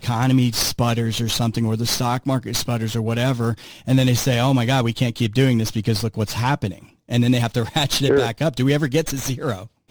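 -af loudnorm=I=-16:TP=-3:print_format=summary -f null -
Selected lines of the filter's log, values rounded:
Input Integrated:    -20.3 LUFS
Input True Peak:      -5.9 dBTP
Input LRA:             1.0 LU
Input Threshold:     -30.5 LUFS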